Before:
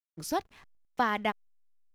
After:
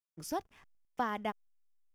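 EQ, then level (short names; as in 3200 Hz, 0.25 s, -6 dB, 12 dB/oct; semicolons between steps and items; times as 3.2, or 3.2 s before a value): notch 4100 Hz, Q 5.2; dynamic EQ 2300 Hz, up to -6 dB, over -44 dBFS, Q 1.1; -5.0 dB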